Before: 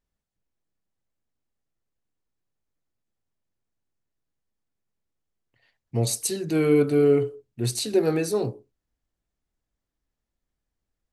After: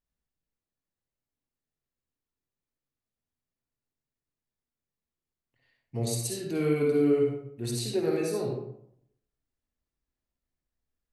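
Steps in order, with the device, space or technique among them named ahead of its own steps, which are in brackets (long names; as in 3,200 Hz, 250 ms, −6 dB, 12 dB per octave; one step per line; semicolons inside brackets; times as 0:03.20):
bathroom (convolution reverb RT60 0.70 s, pre-delay 48 ms, DRR −0.5 dB)
level −8 dB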